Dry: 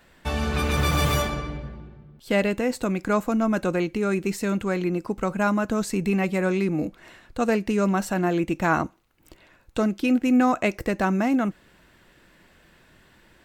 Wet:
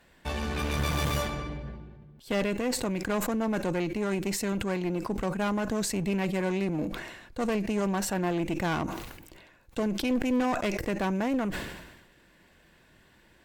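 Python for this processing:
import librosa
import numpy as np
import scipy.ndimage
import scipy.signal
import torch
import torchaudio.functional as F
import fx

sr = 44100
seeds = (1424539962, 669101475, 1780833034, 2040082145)

y = fx.clip_asym(x, sr, top_db=-28.0, bottom_db=-14.0)
y = fx.notch(y, sr, hz=1300.0, q=11.0)
y = fx.sustainer(y, sr, db_per_s=51.0)
y = F.gain(torch.from_numpy(y), -4.0).numpy()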